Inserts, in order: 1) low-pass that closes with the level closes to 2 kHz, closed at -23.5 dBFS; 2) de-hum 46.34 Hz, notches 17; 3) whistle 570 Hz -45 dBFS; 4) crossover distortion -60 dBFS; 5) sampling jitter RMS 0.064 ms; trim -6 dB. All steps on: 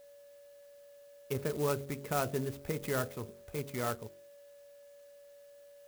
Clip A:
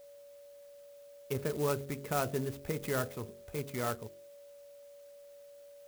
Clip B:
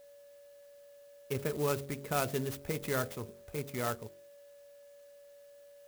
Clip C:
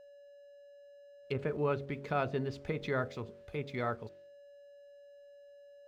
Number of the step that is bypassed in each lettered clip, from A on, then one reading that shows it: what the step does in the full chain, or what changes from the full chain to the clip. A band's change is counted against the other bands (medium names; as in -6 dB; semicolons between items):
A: 4, distortion -29 dB; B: 1, 4 kHz band +2.0 dB; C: 5, 4 kHz band -3.5 dB